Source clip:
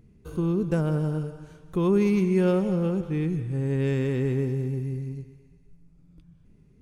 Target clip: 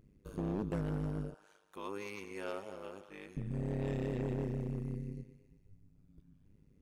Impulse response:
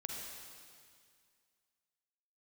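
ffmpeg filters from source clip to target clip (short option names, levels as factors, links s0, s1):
-filter_complex "[0:a]asettb=1/sr,asplit=3[s0][s1][s2];[s0]atrim=end=1.344[s3];[s1]atrim=start=1.34:end=3.37,asetpts=PTS-STARTPTS,afade=t=in:d=0.004:c=qsin,afade=t=out:st=2.026:d=0.004:c=qsin,highpass=750[s4];[s2]atrim=start=3.366[s5];[s3][s4]acrossfade=d=0.004:c1=hsin:c2=qsin[s6];[s6][s5]acrossfade=d=0.004:c1=qsin:c2=hsin,tremolo=f=100:d=0.974,asoftclip=type=hard:threshold=0.0531,volume=0.596"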